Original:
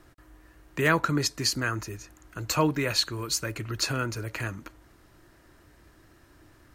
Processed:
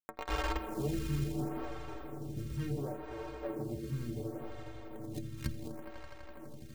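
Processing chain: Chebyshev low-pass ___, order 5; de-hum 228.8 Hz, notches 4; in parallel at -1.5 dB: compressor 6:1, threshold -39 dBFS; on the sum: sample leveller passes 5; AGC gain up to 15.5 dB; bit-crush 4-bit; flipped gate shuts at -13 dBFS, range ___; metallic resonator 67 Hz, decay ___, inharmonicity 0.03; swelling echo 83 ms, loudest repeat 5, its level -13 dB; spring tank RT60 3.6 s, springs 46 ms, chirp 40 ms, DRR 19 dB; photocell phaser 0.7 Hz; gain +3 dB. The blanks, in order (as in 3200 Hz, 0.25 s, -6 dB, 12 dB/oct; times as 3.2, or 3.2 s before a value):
590 Hz, -26 dB, 0.27 s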